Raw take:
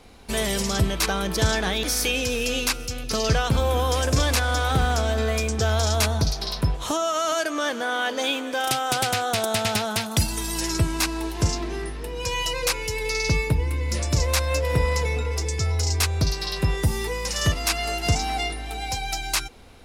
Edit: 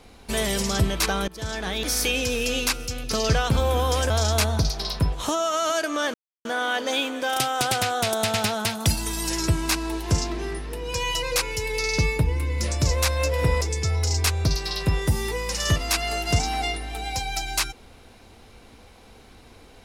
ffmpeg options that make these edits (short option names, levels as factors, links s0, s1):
-filter_complex "[0:a]asplit=5[s0][s1][s2][s3][s4];[s0]atrim=end=1.28,asetpts=PTS-STARTPTS,afade=t=out:st=1.276:d=0.004:c=hsin:silence=0.0749894[s5];[s1]atrim=start=1.28:end=4.102,asetpts=PTS-STARTPTS,afade=t=in:d=0.67:silence=0.0749894[s6];[s2]atrim=start=5.718:end=7.76,asetpts=PTS-STARTPTS,afade=t=out:st=2.038:d=0.004:c=hsin,apad=pad_dur=0.31[s7];[s3]atrim=start=7.76:end=14.922,asetpts=PTS-STARTPTS,afade=t=in:d=0.004:c=hsin[s8];[s4]atrim=start=15.368[s9];[s5][s6]concat=n=2:v=0:a=1[s10];[s7][s8]concat=n=2:v=0:a=1[s11];[s10][s11]acrossfade=d=0.004:c1=hsin:c2=hsin[s12];[s12][s9]acrossfade=d=0.004:c1=hsin:c2=hsin"